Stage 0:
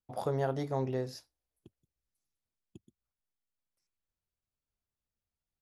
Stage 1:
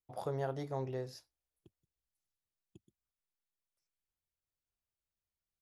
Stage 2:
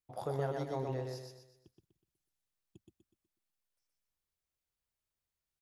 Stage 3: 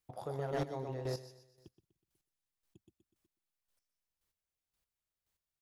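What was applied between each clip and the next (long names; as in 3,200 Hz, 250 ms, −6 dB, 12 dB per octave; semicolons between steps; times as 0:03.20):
parametric band 240 Hz −8.5 dB 0.24 octaves; level −5 dB
repeating echo 123 ms, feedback 41%, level −3.5 dB
square-wave tremolo 1.9 Hz, depth 65%, duty 20%; gain into a clipping stage and back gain 35.5 dB; level +5.5 dB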